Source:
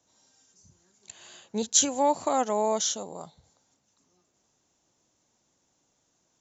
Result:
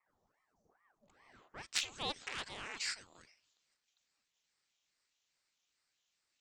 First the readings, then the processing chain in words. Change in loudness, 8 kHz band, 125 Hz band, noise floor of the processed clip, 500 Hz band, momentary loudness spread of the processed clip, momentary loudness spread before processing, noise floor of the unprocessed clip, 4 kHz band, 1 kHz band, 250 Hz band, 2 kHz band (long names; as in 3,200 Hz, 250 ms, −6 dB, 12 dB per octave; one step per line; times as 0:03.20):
−14.0 dB, can't be measured, −10.5 dB, −85 dBFS, −25.0 dB, 11 LU, 14 LU, −73 dBFS, −7.0 dB, −20.5 dB, −24.0 dB, +2.5 dB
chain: harmonic generator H 7 −10 dB, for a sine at −5.5 dBFS
band-pass filter sweep 410 Hz → 3,100 Hz, 0:01.24–0:01.80
ring modulator whose carrier an LFO sweeps 870 Hz, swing 80%, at 2.4 Hz
level +1 dB